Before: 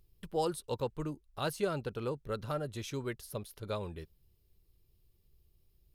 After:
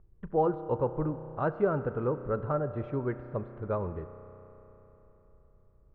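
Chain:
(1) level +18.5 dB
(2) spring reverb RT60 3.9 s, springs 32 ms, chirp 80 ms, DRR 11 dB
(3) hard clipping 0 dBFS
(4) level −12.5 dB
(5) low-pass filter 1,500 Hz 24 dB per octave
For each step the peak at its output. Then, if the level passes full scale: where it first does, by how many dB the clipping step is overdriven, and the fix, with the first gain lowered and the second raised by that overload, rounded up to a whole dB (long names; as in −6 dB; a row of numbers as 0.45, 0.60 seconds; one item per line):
−1.5, −1.5, −1.5, −14.0, −14.5 dBFS
no step passes full scale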